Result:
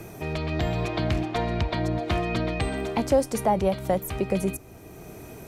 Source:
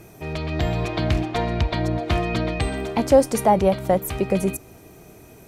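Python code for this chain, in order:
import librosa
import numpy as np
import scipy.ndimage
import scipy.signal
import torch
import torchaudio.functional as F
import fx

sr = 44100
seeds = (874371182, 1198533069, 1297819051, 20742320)

y = fx.band_squash(x, sr, depth_pct=40)
y = y * 10.0 ** (-4.0 / 20.0)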